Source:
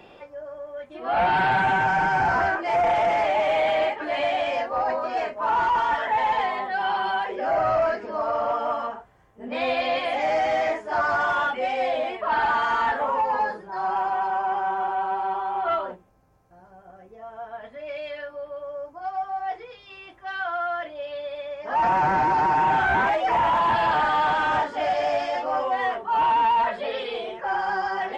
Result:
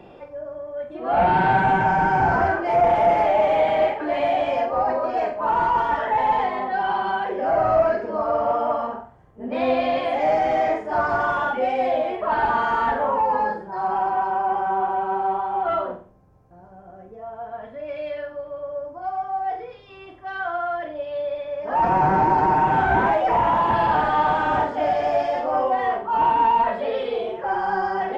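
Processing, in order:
tilt shelving filter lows +6.5 dB, about 1,100 Hz
on a send: flutter between parallel walls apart 8 metres, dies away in 0.38 s

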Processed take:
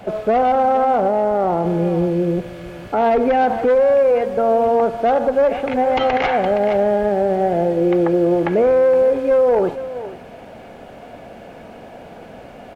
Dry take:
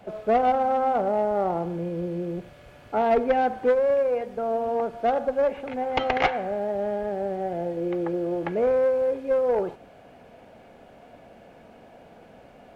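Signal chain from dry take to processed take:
on a send: single-tap delay 467 ms −17 dB
on the sum: boost into a limiter +19.5 dB
level −8 dB

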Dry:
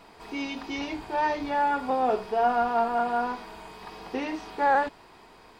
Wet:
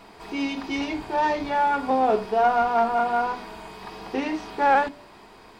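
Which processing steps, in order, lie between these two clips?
phase distortion by the signal itself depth 0.064 ms
on a send: high-pass filter 300 Hz 6 dB per octave + convolution reverb RT60 0.55 s, pre-delay 3 ms, DRR 15 dB
on the sum: level +3.5 dB

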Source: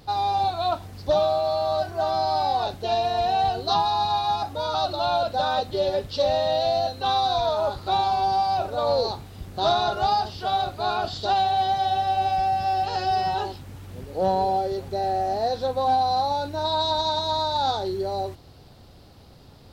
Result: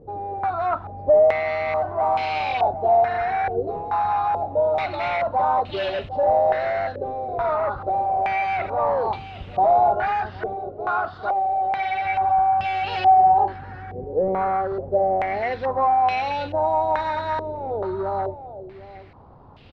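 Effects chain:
0:10.53–0:12.05: low-shelf EQ 310 Hz −10 dB
hard clipping −23 dBFS, distortion −11 dB
single-tap delay 759 ms −15 dB
low-pass on a step sequencer 2.3 Hz 470–2,800 Hz

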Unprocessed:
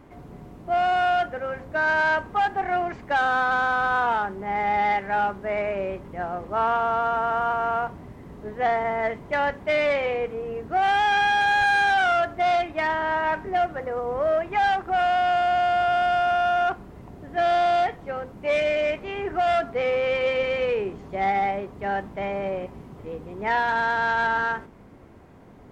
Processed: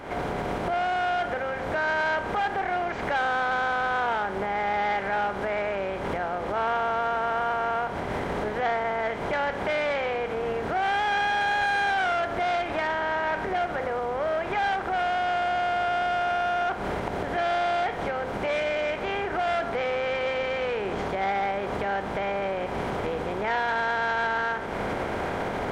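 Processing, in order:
compressor on every frequency bin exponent 0.6
camcorder AGC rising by 78 dB per second
level −6.5 dB

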